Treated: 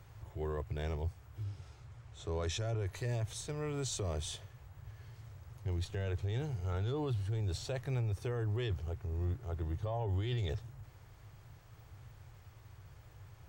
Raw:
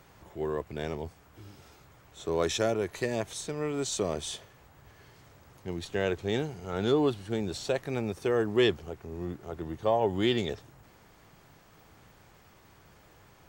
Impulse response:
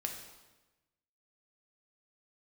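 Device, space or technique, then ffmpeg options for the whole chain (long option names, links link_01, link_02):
car stereo with a boomy subwoofer: -filter_complex "[0:a]lowshelf=frequency=150:width_type=q:width=3:gain=9.5,alimiter=limit=-23.5dB:level=0:latency=1:release=10,asettb=1/sr,asplit=3[link_01][link_02][link_03];[link_01]atrim=end=1.434[link_04];[link_02]atrim=start=1.43:end=2.86,asetpts=PTS-STARTPTS,afade=type=in:duration=0.004:curve=qsin,afade=type=out:start_time=1.426:duration=0.004:curve=qsin,lowpass=9100[link_05];[link_03]atrim=start=2.856[link_06];[link_04][link_05]acrossfade=duration=0.004:curve1=hsin:curve2=qsin[link_07];[link_07][link_06]acrossfade=duration=0.004:curve1=qsin:curve2=hsin,volume=-5.5dB"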